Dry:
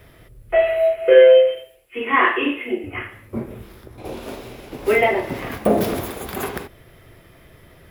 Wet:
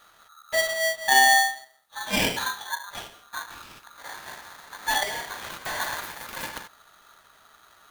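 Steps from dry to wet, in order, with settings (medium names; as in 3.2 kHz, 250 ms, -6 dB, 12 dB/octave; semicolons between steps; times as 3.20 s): 3.50–3.79 s: time-frequency box 910–4800 Hz +12 dB; 5.03–5.80 s: overload inside the chain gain 21.5 dB; polarity switched at an audio rate 1.3 kHz; trim -8 dB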